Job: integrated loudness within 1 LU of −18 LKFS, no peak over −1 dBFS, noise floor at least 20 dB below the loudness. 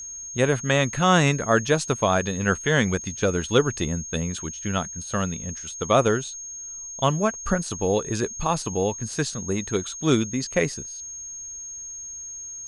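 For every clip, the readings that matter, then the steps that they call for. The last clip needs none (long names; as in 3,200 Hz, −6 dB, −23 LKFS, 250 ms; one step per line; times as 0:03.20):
interfering tone 6,500 Hz; level of the tone −34 dBFS; integrated loudness −24.5 LKFS; sample peak −4.0 dBFS; target loudness −18.0 LKFS
→ notch filter 6,500 Hz, Q 30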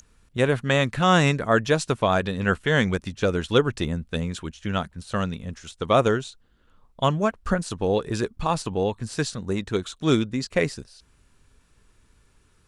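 interfering tone none found; integrated loudness −24.5 LKFS; sample peak −4.0 dBFS; target loudness −18.0 LKFS
→ level +6.5 dB
brickwall limiter −1 dBFS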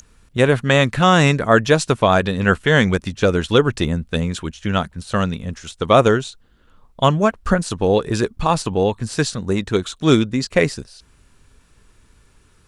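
integrated loudness −18.0 LKFS; sample peak −1.0 dBFS; background noise floor −55 dBFS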